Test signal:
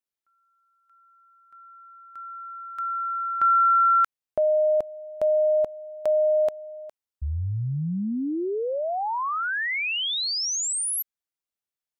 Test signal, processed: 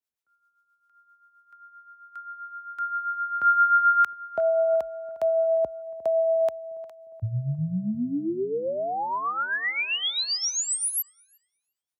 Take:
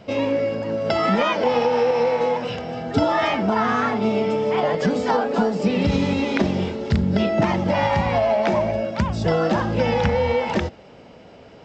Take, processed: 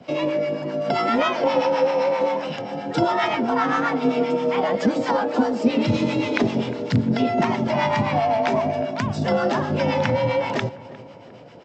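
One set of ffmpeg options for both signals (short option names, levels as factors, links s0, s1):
-filter_complex "[0:a]afreqshift=39,acrossover=split=730[s0][s1];[s0]aeval=exprs='val(0)*(1-0.7/2+0.7/2*cos(2*PI*7.6*n/s))':c=same[s2];[s1]aeval=exprs='val(0)*(1-0.7/2-0.7/2*cos(2*PI*7.6*n/s))':c=same[s3];[s2][s3]amix=inputs=2:normalize=0,asplit=2[s4][s5];[s5]adelay=355,lowpass=f=1600:p=1,volume=0.141,asplit=2[s6][s7];[s7]adelay=355,lowpass=f=1600:p=1,volume=0.54,asplit=2[s8][s9];[s9]adelay=355,lowpass=f=1600:p=1,volume=0.54,asplit=2[s10][s11];[s11]adelay=355,lowpass=f=1600:p=1,volume=0.54,asplit=2[s12][s13];[s13]adelay=355,lowpass=f=1600:p=1,volume=0.54[s14];[s6][s8][s10][s12][s14]amix=inputs=5:normalize=0[s15];[s4][s15]amix=inputs=2:normalize=0,volume=1.33"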